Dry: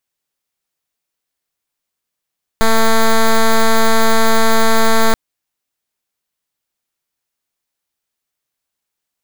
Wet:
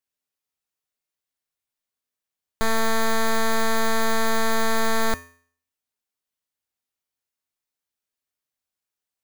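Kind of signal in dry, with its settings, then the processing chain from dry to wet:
pulse wave 224 Hz, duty 8% −9.5 dBFS 2.53 s
tuned comb filter 85 Hz, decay 0.51 s, harmonics odd, mix 70%

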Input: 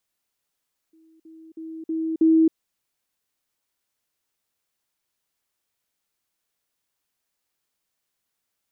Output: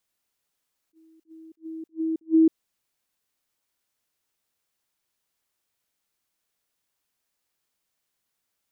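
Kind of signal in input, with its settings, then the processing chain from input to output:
level staircase 322 Hz −53 dBFS, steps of 10 dB, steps 5, 0.27 s 0.05 s
level that may rise only so fast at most 420 dB per second

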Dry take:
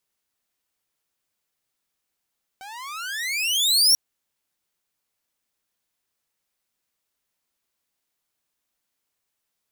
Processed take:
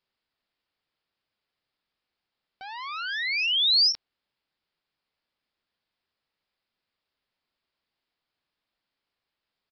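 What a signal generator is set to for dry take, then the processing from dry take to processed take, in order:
pitch glide with a swell saw, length 1.34 s, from 753 Hz, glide +35 semitones, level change +26 dB, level −9 dB
downsampling to 11,025 Hz

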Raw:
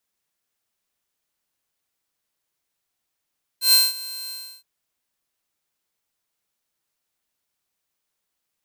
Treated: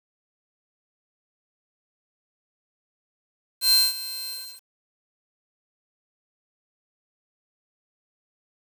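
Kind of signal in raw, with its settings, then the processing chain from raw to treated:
note with an ADSR envelope saw 4,150 Hz, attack 118 ms, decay 198 ms, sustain −20 dB, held 0.69 s, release 329 ms −8.5 dBFS
dynamic equaliser 330 Hz, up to −5 dB, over −55 dBFS, Q 1.4
asymmetric clip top −19.5 dBFS, bottom −11 dBFS
bit-depth reduction 8 bits, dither none

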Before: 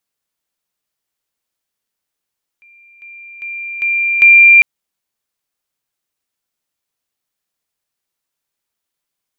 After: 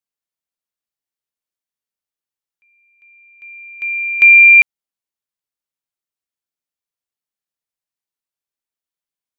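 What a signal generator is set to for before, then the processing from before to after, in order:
level staircase 2,380 Hz −42.5 dBFS, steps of 10 dB, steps 5, 0.40 s 0.00 s
expander for the loud parts 1.5 to 1, over −29 dBFS

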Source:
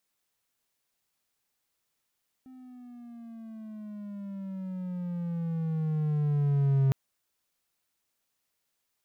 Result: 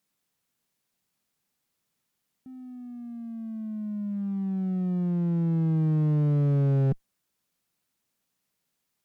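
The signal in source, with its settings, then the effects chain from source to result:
pitch glide with a swell triangle, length 4.46 s, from 260 Hz, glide −11.5 semitones, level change +26.5 dB, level −18 dB
parametric band 180 Hz +9.5 dB 1.4 octaves
asymmetric clip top −27.5 dBFS, bottom −17.5 dBFS

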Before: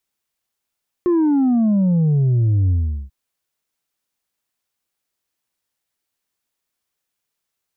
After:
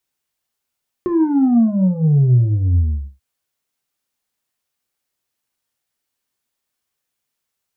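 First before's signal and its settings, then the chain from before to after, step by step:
bass drop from 360 Hz, over 2.04 s, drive 3 dB, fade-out 0.40 s, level −13.5 dB
reverb whose tail is shaped and stops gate 120 ms falling, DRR 6 dB

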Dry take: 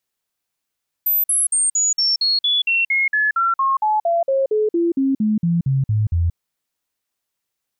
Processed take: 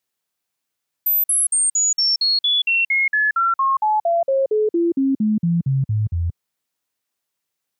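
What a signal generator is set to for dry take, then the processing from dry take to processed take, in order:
stepped sweep 13,700 Hz down, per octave 3, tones 23, 0.18 s, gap 0.05 s −14.5 dBFS
high-pass filter 87 Hz

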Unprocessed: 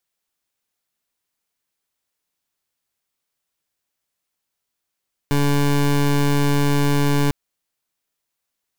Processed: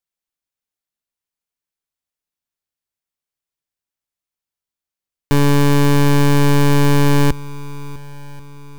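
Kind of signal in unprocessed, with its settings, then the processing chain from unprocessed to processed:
pulse wave 143 Hz, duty 22% −17 dBFS 2.00 s
low-shelf EQ 110 Hz +6.5 dB
leveller curve on the samples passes 5
feedback echo with a long and a short gap by turns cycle 1,086 ms, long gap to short 1.5 to 1, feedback 41%, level −20 dB

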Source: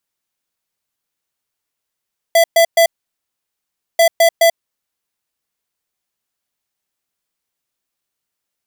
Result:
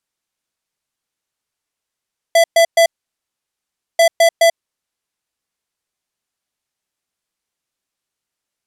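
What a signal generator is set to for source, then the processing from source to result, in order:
beeps in groups square 668 Hz, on 0.09 s, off 0.12 s, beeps 3, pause 1.13 s, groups 2, −9.5 dBFS
low-pass filter 11,000 Hz 12 dB per octave

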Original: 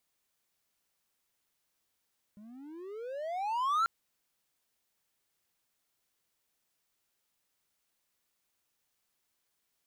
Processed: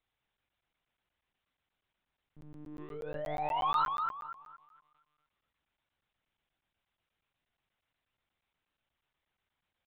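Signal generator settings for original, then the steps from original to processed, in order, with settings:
pitch glide with a swell triangle, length 1.49 s, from 201 Hz, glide +33.5 semitones, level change +24.5 dB, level −22.5 dB
bucket-brigade delay 233 ms, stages 4,096, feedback 33%, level −4.5 dB
one-pitch LPC vocoder at 8 kHz 150 Hz
regular buffer underruns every 0.12 s, samples 512, zero, from 0:00.37

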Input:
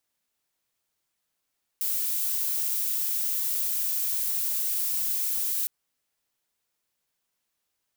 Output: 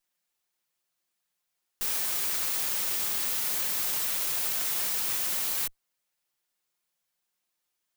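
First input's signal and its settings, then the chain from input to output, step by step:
noise violet, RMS −27.5 dBFS 3.86 s
lower of the sound and its delayed copy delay 5.6 ms
low-shelf EQ 470 Hz −4 dB

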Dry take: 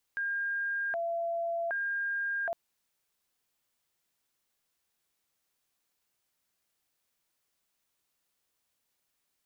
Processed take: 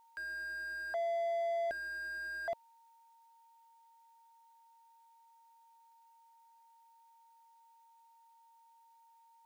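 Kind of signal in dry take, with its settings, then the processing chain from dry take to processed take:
siren hi-lo 677–1,610 Hz 0.65 per second sine −29.5 dBFS 2.36 s
Butterworth high-pass 550 Hz 72 dB per octave
steady tone 920 Hz −62 dBFS
slew-rate limiting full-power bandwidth 15 Hz

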